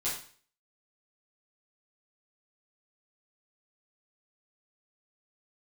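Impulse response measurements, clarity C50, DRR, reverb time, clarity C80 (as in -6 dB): 4.5 dB, -10.0 dB, 0.45 s, 9.0 dB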